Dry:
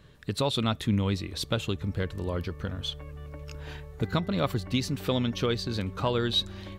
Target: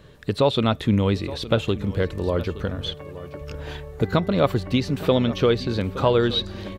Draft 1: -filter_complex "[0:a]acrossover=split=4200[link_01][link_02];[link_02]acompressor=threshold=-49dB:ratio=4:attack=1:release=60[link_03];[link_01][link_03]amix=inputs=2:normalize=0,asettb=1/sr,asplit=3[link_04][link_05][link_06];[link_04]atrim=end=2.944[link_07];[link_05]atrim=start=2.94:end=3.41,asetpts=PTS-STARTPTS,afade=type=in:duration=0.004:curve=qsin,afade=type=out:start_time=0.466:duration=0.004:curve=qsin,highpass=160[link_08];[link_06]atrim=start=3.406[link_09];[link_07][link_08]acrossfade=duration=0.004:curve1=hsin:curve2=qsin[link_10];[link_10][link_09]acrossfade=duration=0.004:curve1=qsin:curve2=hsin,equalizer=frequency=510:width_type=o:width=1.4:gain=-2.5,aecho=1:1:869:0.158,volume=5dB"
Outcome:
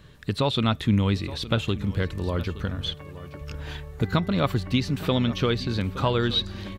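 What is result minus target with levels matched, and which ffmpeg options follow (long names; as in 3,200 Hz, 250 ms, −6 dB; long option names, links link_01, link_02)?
500 Hz band −4.5 dB
-filter_complex "[0:a]acrossover=split=4200[link_01][link_02];[link_02]acompressor=threshold=-49dB:ratio=4:attack=1:release=60[link_03];[link_01][link_03]amix=inputs=2:normalize=0,asettb=1/sr,asplit=3[link_04][link_05][link_06];[link_04]atrim=end=2.944[link_07];[link_05]atrim=start=2.94:end=3.41,asetpts=PTS-STARTPTS,afade=type=in:duration=0.004:curve=qsin,afade=type=out:start_time=0.466:duration=0.004:curve=qsin,highpass=160[link_08];[link_06]atrim=start=3.406[link_09];[link_07][link_08]acrossfade=duration=0.004:curve1=hsin:curve2=qsin[link_10];[link_10][link_09]acrossfade=duration=0.004:curve1=qsin:curve2=hsin,equalizer=frequency=510:width_type=o:width=1.4:gain=5.5,aecho=1:1:869:0.158,volume=5dB"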